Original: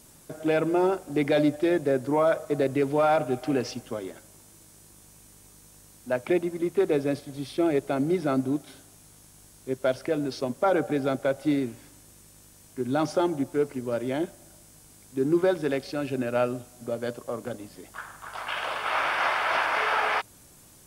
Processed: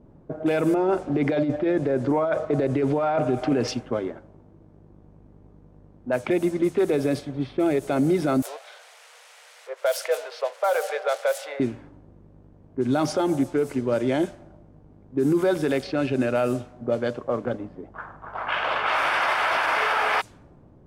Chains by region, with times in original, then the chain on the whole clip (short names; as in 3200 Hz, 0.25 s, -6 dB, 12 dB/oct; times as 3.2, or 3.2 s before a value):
0.74–3.68 LPF 9100 Hz + high shelf 3200 Hz -10.5 dB + negative-ratio compressor -25 dBFS, ratio -0.5
8.42–11.6 switching spikes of -28.5 dBFS + Chebyshev high-pass 470 Hz, order 6
whole clip: low-pass opened by the level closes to 530 Hz, open at -22 dBFS; limiter -21 dBFS; gain +7 dB